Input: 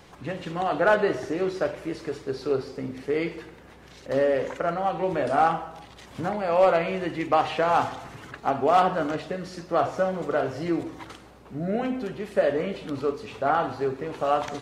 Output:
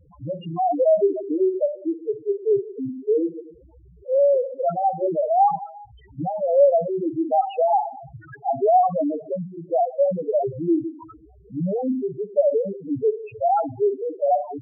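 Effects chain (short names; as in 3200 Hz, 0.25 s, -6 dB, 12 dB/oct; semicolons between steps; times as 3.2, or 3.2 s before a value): bell 220 Hz -7 dB 0.26 oct; loudest bins only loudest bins 2; in parallel at 0 dB: limiter -24 dBFS, peak gain reduction 10.5 dB; on the sum: gain +3 dB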